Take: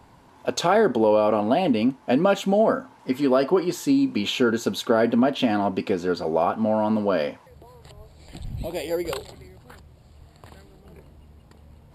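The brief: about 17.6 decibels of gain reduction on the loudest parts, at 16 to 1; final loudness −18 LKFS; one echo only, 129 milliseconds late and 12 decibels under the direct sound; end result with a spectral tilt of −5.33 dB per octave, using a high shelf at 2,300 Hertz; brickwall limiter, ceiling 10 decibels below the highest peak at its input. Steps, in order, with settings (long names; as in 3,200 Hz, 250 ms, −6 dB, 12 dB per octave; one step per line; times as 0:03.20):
high-shelf EQ 2,300 Hz −8.5 dB
downward compressor 16 to 1, threshold −33 dBFS
brickwall limiter −29.5 dBFS
single-tap delay 129 ms −12 dB
level +22.5 dB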